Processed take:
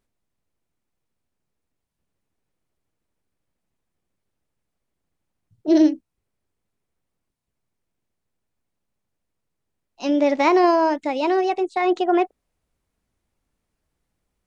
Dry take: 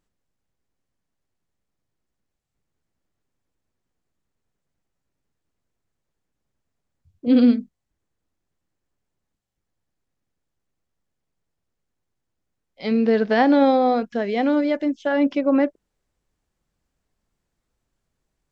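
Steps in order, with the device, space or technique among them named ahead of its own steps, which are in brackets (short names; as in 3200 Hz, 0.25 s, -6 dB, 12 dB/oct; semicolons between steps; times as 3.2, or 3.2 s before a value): nightcore (varispeed +28%)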